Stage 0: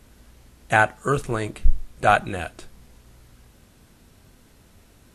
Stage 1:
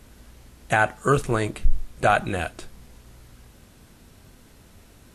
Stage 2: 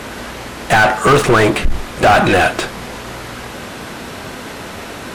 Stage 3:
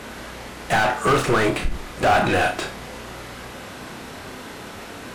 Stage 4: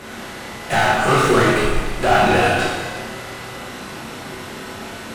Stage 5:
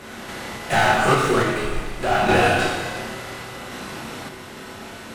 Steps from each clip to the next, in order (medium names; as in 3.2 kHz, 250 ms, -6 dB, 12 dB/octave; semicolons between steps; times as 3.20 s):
peak limiter -9.5 dBFS, peak gain reduction 6.5 dB; trim +2.5 dB
overdrive pedal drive 34 dB, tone 1.8 kHz, clips at -6.5 dBFS; trim +4.5 dB
flutter echo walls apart 5.4 m, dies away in 0.27 s; trim -8.5 dB
plate-style reverb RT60 1.6 s, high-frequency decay 1×, DRR -4.5 dB; trim -1.5 dB
random-step tremolo